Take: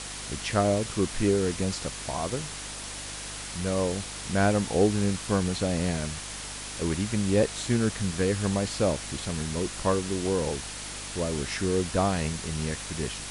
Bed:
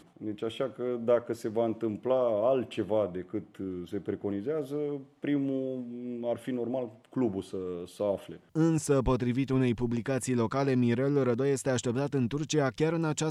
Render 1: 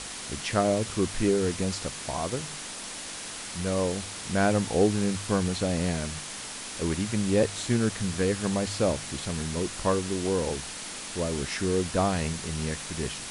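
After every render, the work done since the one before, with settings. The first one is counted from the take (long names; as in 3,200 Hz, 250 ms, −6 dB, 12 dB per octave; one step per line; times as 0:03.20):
hum removal 50 Hz, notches 3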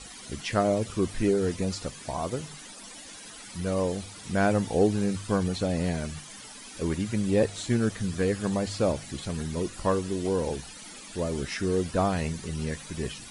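broadband denoise 14 dB, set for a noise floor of −39 dBFS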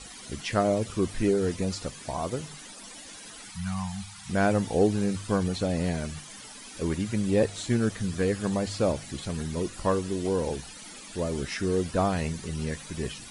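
0:03.50–0:04.29: Chebyshev band-stop filter 200–760 Hz, order 4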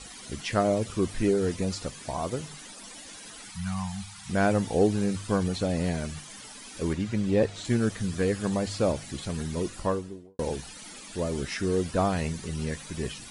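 0:06.93–0:07.65: high-frequency loss of the air 69 metres
0:09.70–0:10.39: fade out and dull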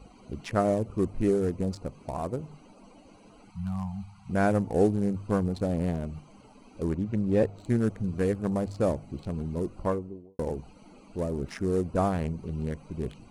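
adaptive Wiener filter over 25 samples
dynamic equaliser 3,700 Hz, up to −6 dB, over −52 dBFS, Q 0.86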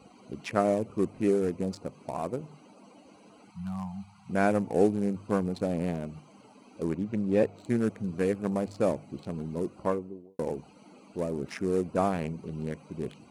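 high-pass filter 160 Hz 12 dB per octave
dynamic equaliser 2,400 Hz, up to +5 dB, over −58 dBFS, Q 4.3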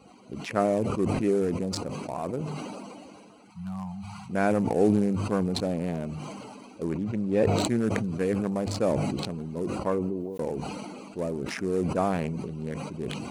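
level that may fall only so fast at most 24 dB per second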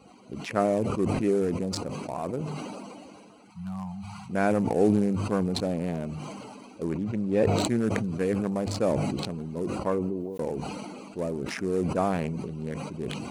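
no processing that can be heard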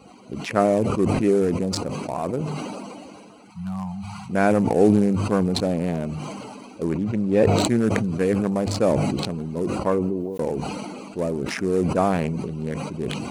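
level +5.5 dB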